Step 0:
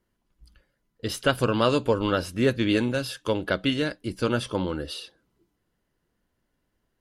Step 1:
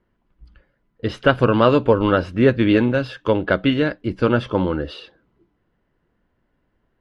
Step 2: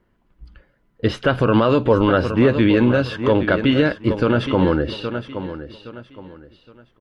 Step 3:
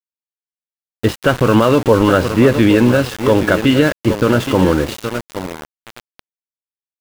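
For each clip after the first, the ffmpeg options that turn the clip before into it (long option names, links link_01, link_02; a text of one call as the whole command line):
ffmpeg -i in.wav -af "lowpass=2300,volume=7.5dB" out.wav
ffmpeg -i in.wav -af "aecho=1:1:817|1634|2451:0.224|0.0649|0.0188,alimiter=level_in=9dB:limit=-1dB:release=50:level=0:latency=1,volume=-4.5dB" out.wav
ffmpeg -i in.wav -af "aeval=exprs='val(0)*gte(abs(val(0)),0.0562)':channel_layout=same,volume=4dB" out.wav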